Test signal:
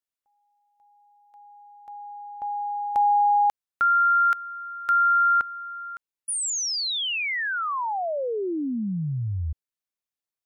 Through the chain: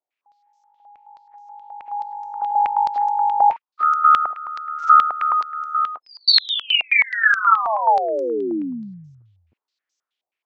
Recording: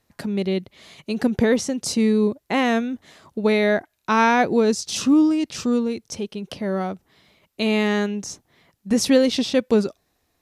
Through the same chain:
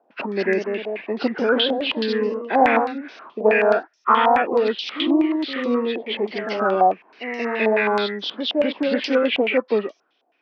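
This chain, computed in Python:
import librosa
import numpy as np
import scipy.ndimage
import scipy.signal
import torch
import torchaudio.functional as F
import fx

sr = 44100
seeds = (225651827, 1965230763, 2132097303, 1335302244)

y = fx.freq_compress(x, sr, knee_hz=1000.0, ratio=1.5)
y = fx.echo_pitch(y, sr, ms=222, semitones=1, count=2, db_per_echo=-6.0)
y = fx.rider(y, sr, range_db=5, speed_s=0.5)
y = scipy.signal.sosfilt(scipy.signal.butter(4, 270.0, 'highpass', fs=sr, output='sos'), y)
y = fx.filter_held_lowpass(y, sr, hz=9.4, low_hz=730.0, high_hz=6000.0)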